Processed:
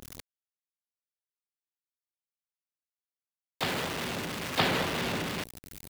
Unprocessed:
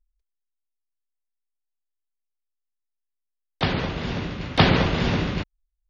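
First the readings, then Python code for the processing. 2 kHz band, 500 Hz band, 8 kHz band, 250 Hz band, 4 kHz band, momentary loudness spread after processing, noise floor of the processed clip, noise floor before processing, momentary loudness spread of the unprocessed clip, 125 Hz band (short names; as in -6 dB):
-5.0 dB, -7.0 dB, n/a, -10.5 dB, -5.0 dB, 13 LU, under -85 dBFS, -81 dBFS, 11 LU, -14.5 dB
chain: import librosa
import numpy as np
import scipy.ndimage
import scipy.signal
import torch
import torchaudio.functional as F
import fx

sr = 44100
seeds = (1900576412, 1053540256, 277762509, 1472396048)

y = x + 0.5 * 10.0 ** (-20.5 / 20.0) * np.sign(x)
y = fx.highpass(y, sr, hz=360.0, slope=6)
y = y * librosa.db_to_amplitude(-8.5)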